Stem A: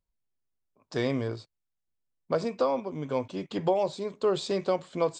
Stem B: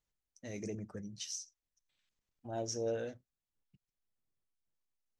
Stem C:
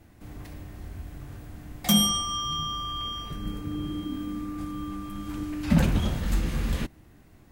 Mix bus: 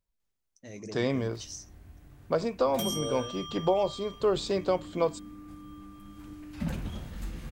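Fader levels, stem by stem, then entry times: 0.0 dB, -0.5 dB, -12.0 dB; 0.00 s, 0.20 s, 0.90 s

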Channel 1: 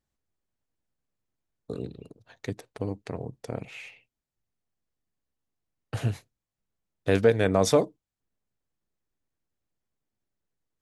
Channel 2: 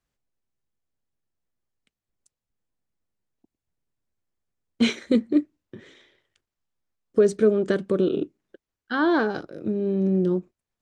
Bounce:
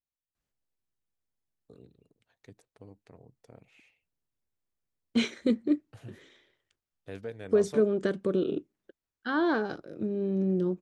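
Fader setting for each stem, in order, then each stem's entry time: -19.0 dB, -5.5 dB; 0.00 s, 0.35 s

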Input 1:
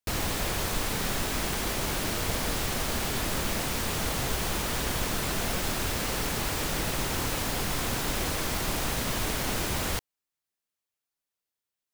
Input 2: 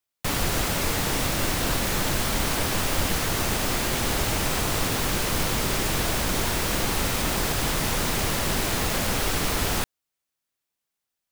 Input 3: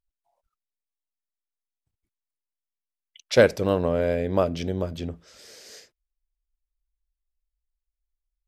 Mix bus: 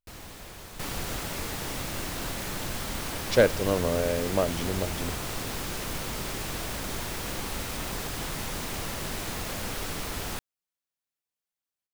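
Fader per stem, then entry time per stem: -14.5 dB, -9.0 dB, -3.5 dB; 0.00 s, 0.55 s, 0.00 s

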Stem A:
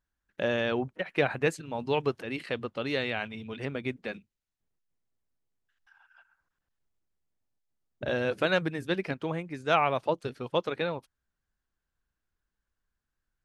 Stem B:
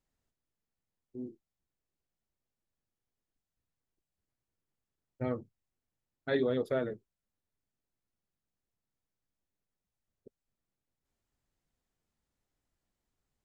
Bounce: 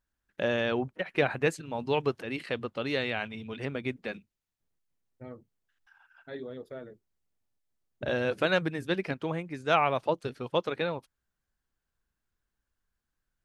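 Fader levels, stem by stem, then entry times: 0.0 dB, -10.5 dB; 0.00 s, 0.00 s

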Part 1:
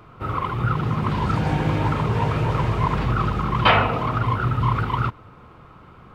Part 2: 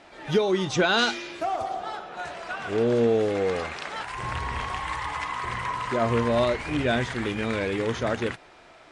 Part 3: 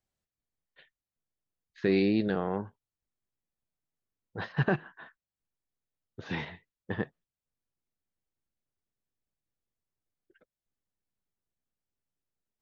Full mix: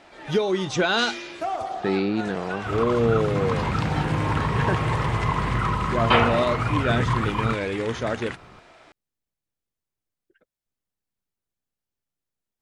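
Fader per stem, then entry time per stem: -3.0 dB, 0.0 dB, +1.5 dB; 2.45 s, 0.00 s, 0.00 s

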